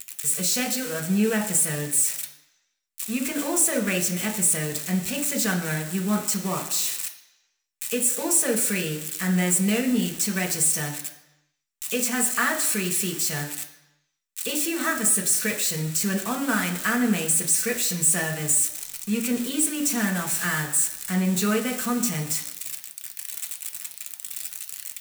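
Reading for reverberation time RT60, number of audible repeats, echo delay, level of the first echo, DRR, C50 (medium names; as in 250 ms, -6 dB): 1.0 s, no echo, no echo, no echo, 1.0 dB, 10.0 dB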